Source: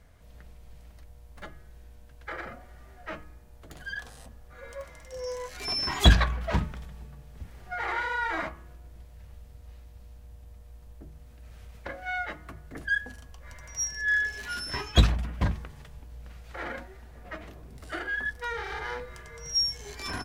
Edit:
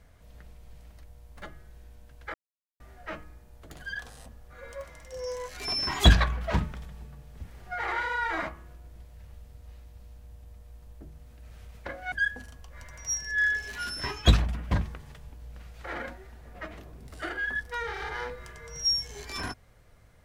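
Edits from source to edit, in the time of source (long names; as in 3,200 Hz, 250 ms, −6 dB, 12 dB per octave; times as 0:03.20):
0:02.34–0:02.80: silence
0:12.12–0:12.82: remove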